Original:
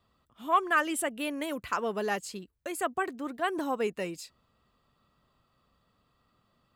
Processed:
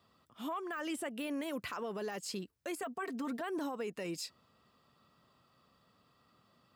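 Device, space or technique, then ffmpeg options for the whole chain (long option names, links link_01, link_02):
broadcast voice chain: -filter_complex "[0:a]asettb=1/sr,asplit=3[link_01][link_02][link_03];[link_01]atrim=end=2.824[link_04];[link_02]atrim=start=2.82:end=3.41,asetpts=PTS-STARTPTS,afade=type=in:duration=0.004:curve=qsin,afade=type=out:start_time=0.586:duration=0.004:curve=qsin,aecho=1:1:4.4:0.9,atrim=end_sample=26019[link_05];[link_03]atrim=start=3.406[link_06];[link_04][link_05]acrossfade=duration=0.004:curve1=hsin:curve2=qsin[link_07];[link_07][link_06]acrossfade=duration=0.004:curve1=qsin:curve2=hsin,highpass=110,deesser=0.9,acompressor=threshold=-34dB:ratio=3,equalizer=frequency=5200:width_type=o:width=0.28:gain=5,alimiter=level_in=9.5dB:limit=-24dB:level=0:latency=1:release=20,volume=-9.5dB,volume=2.5dB"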